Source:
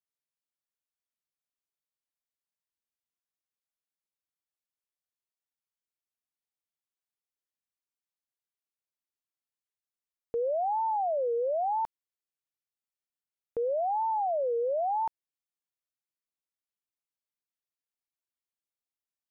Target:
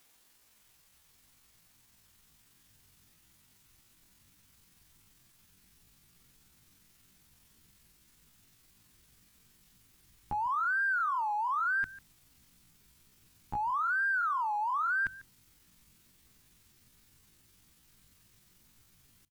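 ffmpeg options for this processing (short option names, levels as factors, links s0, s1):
-filter_complex "[0:a]aeval=exprs='val(0)+0.5*0.00251*sgn(val(0))':c=same,asetrate=78577,aresample=44100,atempo=0.561231,equalizer=f=570:t=o:w=0.33:g=-2,asplit=2[s0][s1];[s1]aecho=0:1:146:0.112[s2];[s0][s2]amix=inputs=2:normalize=0,asubboost=boost=9:cutoff=190,bandreject=f=46.13:t=h:w=4,bandreject=f=92.26:t=h:w=4,bandreject=f=138.39:t=h:w=4"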